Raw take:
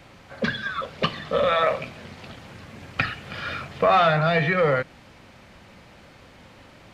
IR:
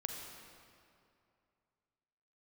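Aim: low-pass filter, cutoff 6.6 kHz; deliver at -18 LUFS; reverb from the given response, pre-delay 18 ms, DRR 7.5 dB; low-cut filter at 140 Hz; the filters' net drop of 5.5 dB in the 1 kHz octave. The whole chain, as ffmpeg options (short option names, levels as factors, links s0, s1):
-filter_complex "[0:a]highpass=140,lowpass=6600,equalizer=f=1000:t=o:g=-8.5,asplit=2[s0][s1];[1:a]atrim=start_sample=2205,adelay=18[s2];[s1][s2]afir=irnorm=-1:irlink=0,volume=0.422[s3];[s0][s3]amix=inputs=2:normalize=0,volume=2.37"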